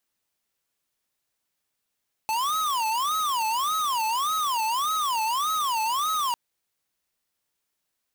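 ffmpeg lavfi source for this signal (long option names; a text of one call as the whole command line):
ffmpeg -f lavfi -i "aevalsrc='0.0531*(2*lt(mod((1076*t-204/(2*PI*1.7)*sin(2*PI*1.7*t)),1),0.5)-1)':duration=4.05:sample_rate=44100" out.wav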